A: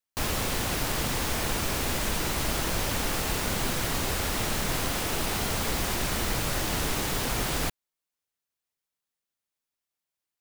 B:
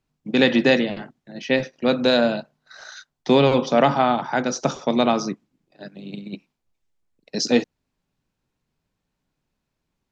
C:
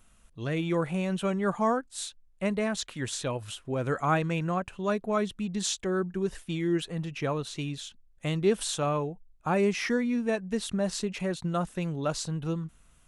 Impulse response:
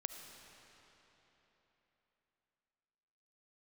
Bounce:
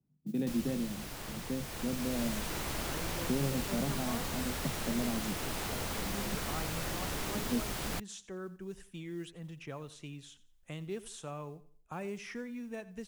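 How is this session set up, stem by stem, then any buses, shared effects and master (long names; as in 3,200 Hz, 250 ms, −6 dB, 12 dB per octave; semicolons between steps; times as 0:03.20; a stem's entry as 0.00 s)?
0:01.55 −17.5 dB → 0:02.24 −9 dB, 0.30 s, no send, no echo send, no processing
−6.0 dB, 0.00 s, no send, no echo send, resonant band-pass 170 Hz, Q 2.1
−17.0 dB, 2.45 s, no send, echo send −18 dB, parametric band 4,200 Hz −5.5 dB 0.42 octaves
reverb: not used
echo: repeating echo 88 ms, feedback 28%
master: noise that follows the level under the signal 34 dB; multiband upward and downward compressor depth 40%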